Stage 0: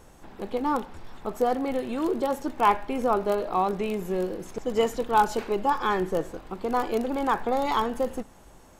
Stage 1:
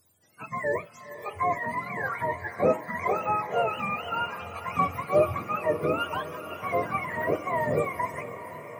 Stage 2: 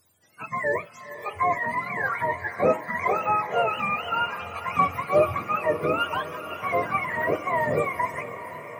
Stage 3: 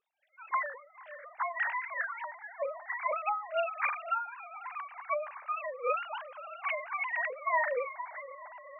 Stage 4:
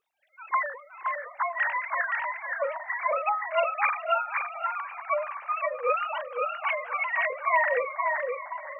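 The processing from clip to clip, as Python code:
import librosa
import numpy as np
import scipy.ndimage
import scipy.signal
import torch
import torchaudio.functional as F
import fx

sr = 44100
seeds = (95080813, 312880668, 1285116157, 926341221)

y1 = fx.octave_mirror(x, sr, pivot_hz=720.0)
y1 = fx.noise_reduce_blind(y1, sr, reduce_db=17)
y1 = fx.echo_diffused(y1, sr, ms=492, feedback_pct=67, wet_db=-13.0)
y2 = fx.peak_eq(y1, sr, hz=2000.0, db=5.0, octaves=2.8)
y3 = fx.sine_speech(y2, sr)
y3 = fx.end_taper(y3, sr, db_per_s=100.0)
y3 = y3 * 10.0 ** (-3.0 / 20.0)
y4 = fx.echo_feedback(y3, sr, ms=521, feedback_pct=15, wet_db=-4)
y4 = y4 * 10.0 ** (5.0 / 20.0)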